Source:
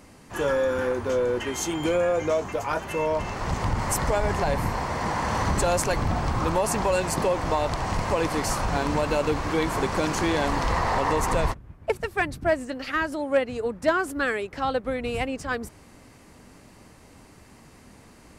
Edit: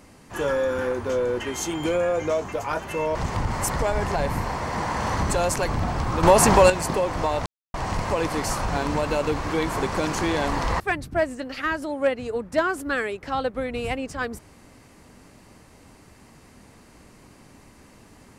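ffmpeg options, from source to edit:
-filter_complex "[0:a]asplit=6[a][b][c][d][e][f];[a]atrim=end=3.152[g];[b]atrim=start=3.428:end=6.512[h];[c]atrim=start=6.508:end=6.982,asetpts=PTS-STARTPTS,volume=9dB[i];[d]atrim=start=6.978:end=7.74,asetpts=PTS-STARTPTS,afade=t=out:st=0.758:d=0.004:c=hsin,apad=pad_dur=0.28[j];[e]atrim=start=7.74:end=10.802,asetpts=PTS-STARTPTS,afade=t=in:d=0.004:c=hsin[k];[f]atrim=start=12.098[l];[g][h]acrossfade=d=0.004:c1=hsin:c2=hsin[m];[m][i]acrossfade=d=0.004:c1=hsin:c2=hsin[n];[j][k]concat=n=2:v=0:a=1[o];[n][o]acrossfade=d=0.004:c1=hsin:c2=hsin[p];[p][l]acrossfade=d=0.004:c1=hsin:c2=hsin"

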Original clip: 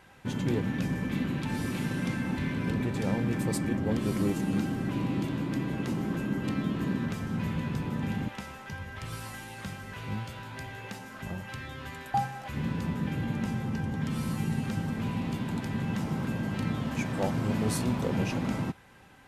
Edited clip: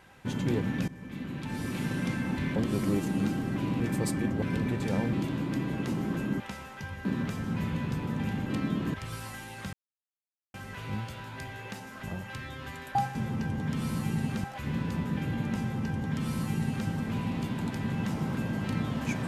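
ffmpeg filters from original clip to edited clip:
-filter_complex "[0:a]asplit=13[a][b][c][d][e][f][g][h][i][j][k][l][m];[a]atrim=end=0.88,asetpts=PTS-STARTPTS,afade=t=out:st=0.876:d=0.004:c=hsin:silence=0.141254[n];[b]atrim=start=0.88:end=2.562,asetpts=PTS-STARTPTS,afade=t=in:d=1.02:silence=0.141254[o];[c]atrim=start=3.888:end=5.132[p];[d]atrim=start=3.268:end=3.892[q];[e]atrim=start=2.558:end=3.272[r];[f]atrim=start=5.128:end=6.402[s];[g]atrim=start=8.288:end=8.942[t];[h]atrim=start=6.878:end=8.292[u];[i]atrim=start=6.398:end=6.882[v];[j]atrim=start=8.938:end=9.73,asetpts=PTS-STARTPTS,afade=t=out:st=0.788:d=0.004:c=hsin,apad=pad_dur=0.81[w];[k]atrim=start=9.73:end=12.342,asetpts=PTS-STARTPTS,afade=t=in:d=0.004:c=hsin[x];[l]atrim=start=13.488:end=14.782[y];[m]atrim=start=12.338[z];[n][o]concat=n=2:v=0:a=1[aa];[aa][p]acrossfade=d=0.004:c1=hsin:c2=hsin[ab];[ab][q]acrossfade=d=0.004:c1=hsin:c2=hsin[ac];[ac][r]acrossfade=d=0.004:c1=hsin:c2=hsin[ad];[ad][s]acrossfade=d=0.004:c1=hsin:c2=hsin[ae];[ae][t]acrossfade=d=0.004:c1=hsin:c2=hsin[af];[af][u]acrossfade=d=0.004:c1=hsin:c2=hsin[ag];[ag][v]acrossfade=d=0.004:c1=hsin:c2=hsin[ah];[w][x]concat=n=2:v=0:a=1[ai];[ah][ai]acrossfade=d=0.004:c1=hsin:c2=hsin[aj];[aj][y]acrossfade=d=0.004:c1=hsin:c2=hsin[ak];[ak][z]acrossfade=d=0.004:c1=hsin:c2=hsin"

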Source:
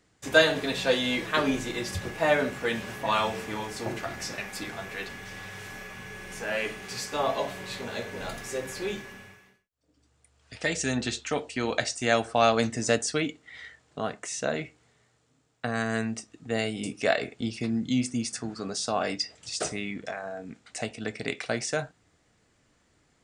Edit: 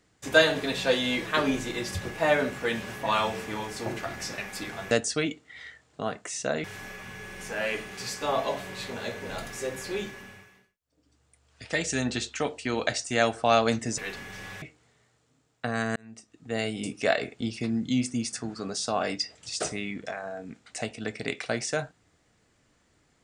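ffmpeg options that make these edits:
-filter_complex "[0:a]asplit=6[a][b][c][d][e][f];[a]atrim=end=4.912[g];[b]atrim=start=12.888:end=14.622[h];[c]atrim=start=5.548:end=12.892[i];[d]atrim=start=4.908:end=5.552[j];[e]atrim=start=14.618:end=15.96,asetpts=PTS-STARTPTS,afade=t=out:st=1.338:d=0.004:c=hsin[k];[f]atrim=start=15.96,asetpts=PTS-STARTPTS,afade=t=in:d=0.73[l];[g][h]acrossfade=d=0.004:c1=hsin:c2=hsin[m];[m][i]acrossfade=d=0.004:c1=hsin:c2=hsin[n];[n][j]acrossfade=d=0.004:c1=hsin:c2=hsin[o];[k][l]concat=n=2:v=0:a=1[p];[o][p]acrossfade=d=0.004:c1=hsin:c2=hsin"

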